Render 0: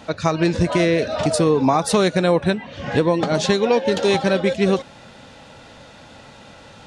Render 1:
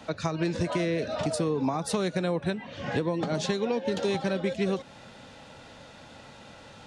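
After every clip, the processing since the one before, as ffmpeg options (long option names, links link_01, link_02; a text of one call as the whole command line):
ffmpeg -i in.wav -filter_complex "[0:a]acrossover=split=81|300[link_01][link_02][link_03];[link_01]acompressor=threshold=-57dB:ratio=4[link_04];[link_02]acompressor=threshold=-24dB:ratio=4[link_05];[link_03]acompressor=threshold=-24dB:ratio=4[link_06];[link_04][link_05][link_06]amix=inputs=3:normalize=0,volume=-5dB" out.wav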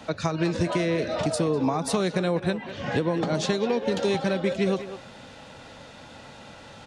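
ffmpeg -i in.wav -filter_complex "[0:a]asplit=2[link_01][link_02];[link_02]adelay=200,highpass=300,lowpass=3400,asoftclip=type=hard:threshold=-24.5dB,volume=-10dB[link_03];[link_01][link_03]amix=inputs=2:normalize=0,volume=3dB" out.wav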